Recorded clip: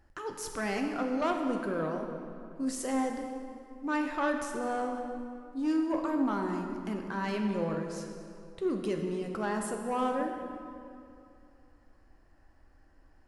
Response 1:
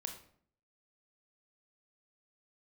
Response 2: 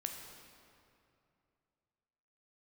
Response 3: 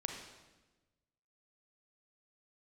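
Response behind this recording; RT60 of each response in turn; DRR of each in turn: 2; 0.60, 2.6, 1.2 seconds; 4.0, 3.0, 2.5 decibels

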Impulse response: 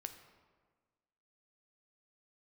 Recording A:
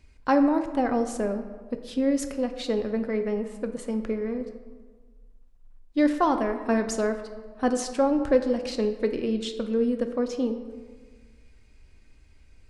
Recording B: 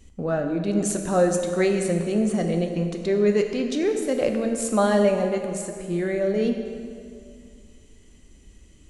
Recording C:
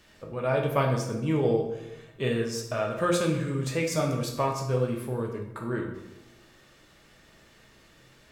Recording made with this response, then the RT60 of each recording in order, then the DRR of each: A; 1.5, 2.2, 0.95 seconds; 7.0, 4.0, 1.0 decibels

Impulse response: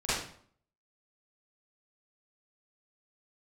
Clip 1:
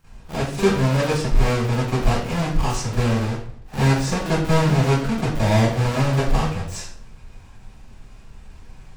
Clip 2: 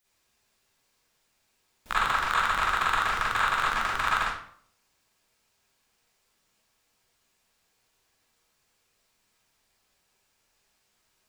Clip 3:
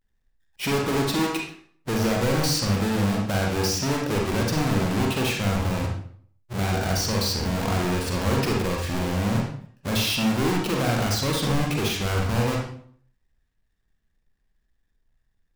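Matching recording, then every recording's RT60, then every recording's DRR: 1; 0.55, 0.55, 0.55 seconds; −14.5, −9.0, −0.5 decibels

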